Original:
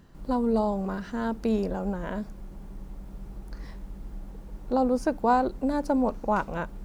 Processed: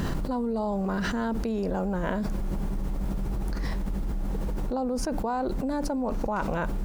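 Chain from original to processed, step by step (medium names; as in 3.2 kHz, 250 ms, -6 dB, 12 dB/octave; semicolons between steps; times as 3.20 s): level flattener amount 100%; trim -9 dB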